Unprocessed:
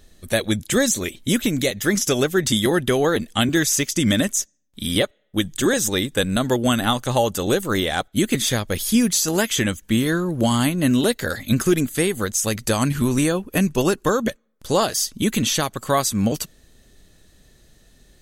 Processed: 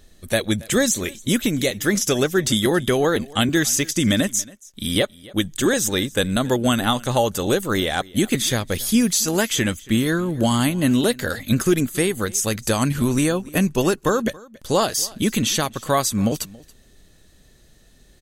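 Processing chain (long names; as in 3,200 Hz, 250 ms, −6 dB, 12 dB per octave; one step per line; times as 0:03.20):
single-tap delay 278 ms −22.5 dB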